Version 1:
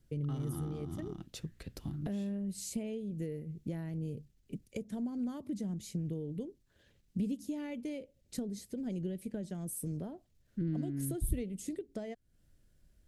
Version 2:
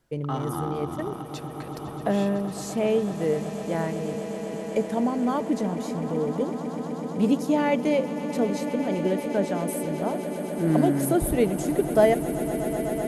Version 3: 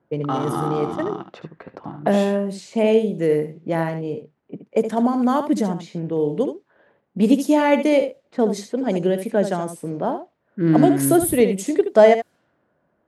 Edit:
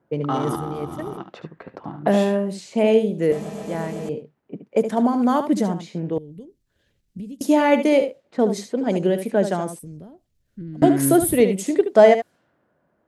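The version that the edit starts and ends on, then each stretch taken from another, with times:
3
0:00.56–0:01.17: punch in from 2
0:03.32–0:04.09: punch in from 2
0:06.18–0:07.41: punch in from 1
0:09.79–0:10.82: punch in from 1

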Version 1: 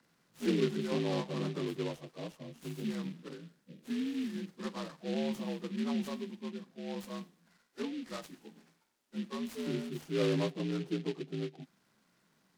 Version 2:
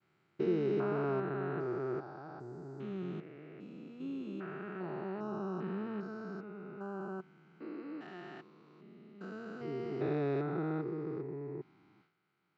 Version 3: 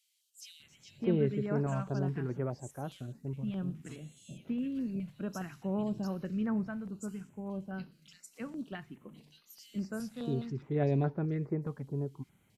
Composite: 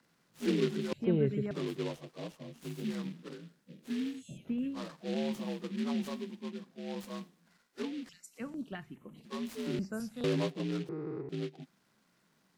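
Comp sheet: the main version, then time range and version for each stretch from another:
1
0:00.93–0:01.51: punch in from 3
0:04.15–0:04.76: punch in from 3, crossfade 0.16 s
0:08.09–0:09.25: punch in from 3
0:09.79–0:10.24: punch in from 3
0:10.89–0:11.29: punch in from 2

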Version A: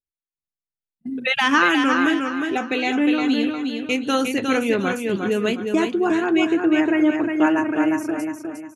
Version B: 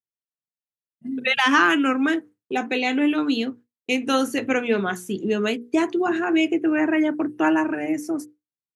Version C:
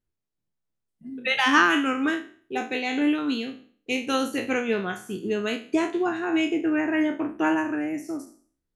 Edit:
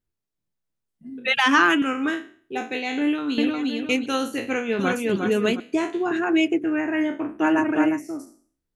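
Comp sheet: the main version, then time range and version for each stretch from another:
C
0:01.28–0:01.82: punch in from B
0:03.38–0:04.06: punch in from A
0:04.79–0:05.60: punch in from A
0:06.11–0:06.64: punch in from B
0:07.47–0:07.94: punch in from A, crossfade 0.16 s

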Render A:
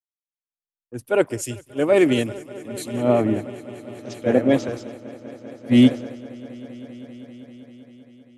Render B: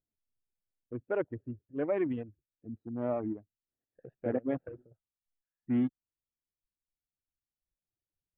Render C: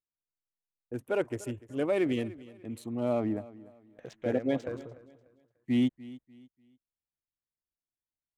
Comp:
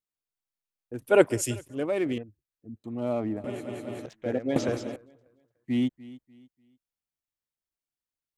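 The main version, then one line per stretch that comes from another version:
C
0:01.02–0:01.68: punch in from A
0:02.18–0:02.84: punch in from B
0:03.44–0:04.06: punch in from A
0:04.56–0:04.96: punch in from A

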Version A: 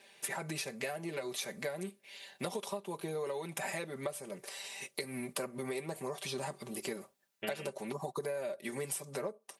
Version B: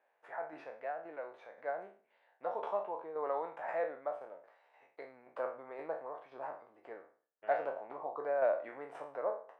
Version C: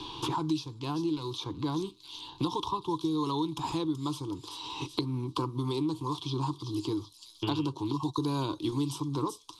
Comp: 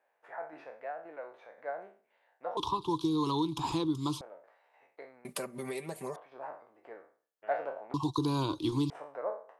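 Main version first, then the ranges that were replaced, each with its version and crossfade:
B
0:02.57–0:04.21: punch in from C
0:05.25–0:06.16: punch in from A
0:07.94–0:08.90: punch in from C

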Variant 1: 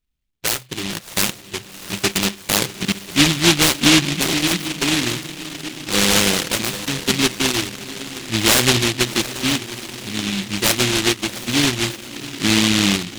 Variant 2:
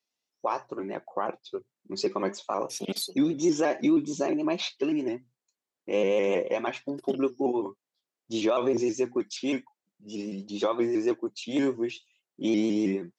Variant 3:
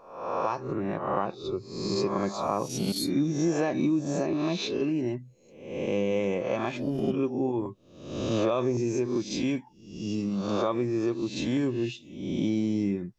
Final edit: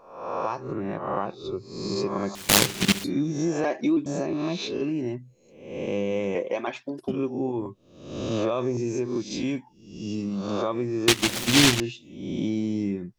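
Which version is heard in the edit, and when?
3
0:02.35–0:03.04: punch in from 1
0:03.64–0:04.06: punch in from 2
0:06.35–0:07.08: punch in from 2
0:11.08–0:11.80: punch in from 1

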